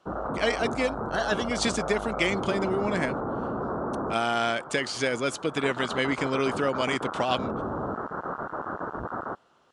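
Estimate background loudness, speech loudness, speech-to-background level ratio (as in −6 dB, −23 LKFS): −33.5 LKFS, −28.0 LKFS, 5.5 dB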